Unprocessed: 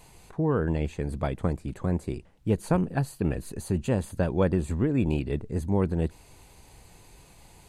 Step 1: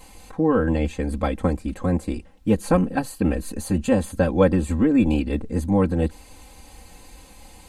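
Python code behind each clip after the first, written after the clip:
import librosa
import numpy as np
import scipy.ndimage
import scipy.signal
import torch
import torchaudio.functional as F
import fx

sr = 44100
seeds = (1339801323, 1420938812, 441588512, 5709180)

y = x + 0.98 * np.pad(x, (int(3.8 * sr / 1000.0), 0))[:len(x)]
y = y * librosa.db_to_amplitude(4.0)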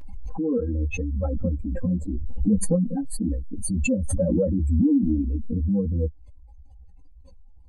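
y = fx.spec_expand(x, sr, power=3.1)
y = fx.chorus_voices(y, sr, voices=4, hz=0.74, base_ms=14, depth_ms=3.4, mix_pct=40)
y = fx.pre_swell(y, sr, db_per_s=24.0)
y = y * librosa.db_to_amplitude(-1.5)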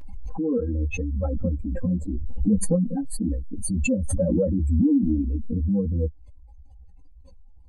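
y = x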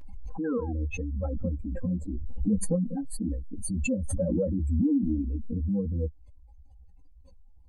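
y = fx.spec_paint(x, sr, seeds[0], shape='fall', start_s=0.44, length_s=0.29, low_hz=680.0, high_hz=1700.0, level_db=-40.0)
y = y * librosa.db_to_amplitude(-5.0)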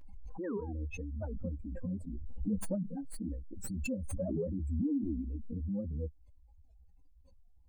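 y = fx.tracing_dist(x, sr, depth_ms=0.043)
y = fx.record_warp(y, sr, rpm=78.0, depth_cents=250.0)
y = y * librosa.db_to_amplitude(-8.0)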